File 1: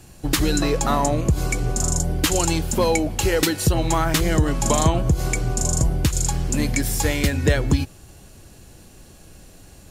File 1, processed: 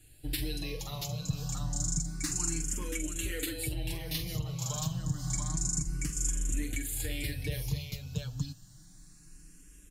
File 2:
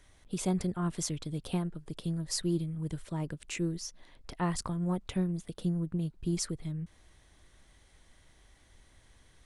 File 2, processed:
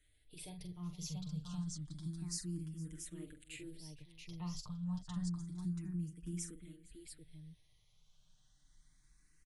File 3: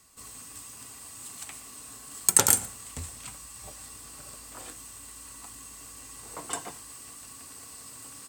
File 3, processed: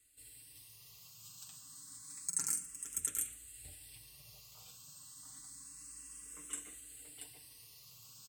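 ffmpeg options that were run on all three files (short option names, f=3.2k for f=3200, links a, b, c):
-filter_complex "[0:a]aecho=1:1:45|461|682:0.376|0.119|0.596,alimiter=limit=-10.5dB:level=0:latency=1:release=354,equalizer=f=660:t=o:w=2.6:g=-14.5,aecho=1:1:6.6:0.65,asplit=2[a][b];[b]afreqshift=0.29[c];[a][c]amix=inputs=2:normalize=1,volume=-7.5dB"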